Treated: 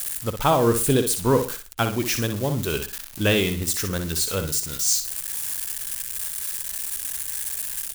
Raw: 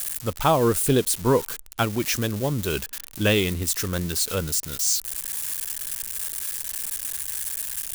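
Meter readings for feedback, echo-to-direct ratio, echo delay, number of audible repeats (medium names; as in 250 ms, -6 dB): 28%, -7.5 dB, 60 ms, 3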